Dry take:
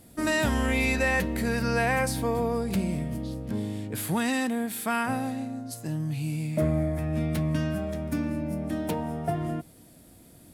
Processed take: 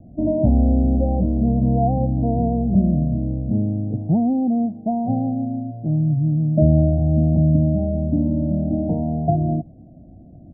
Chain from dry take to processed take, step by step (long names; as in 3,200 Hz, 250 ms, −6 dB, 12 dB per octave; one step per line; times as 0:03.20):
Butterworth low-pass 710 Hz 72 dB per octave
comb filter 1.1 ms, depth 68%
level +8.5 dB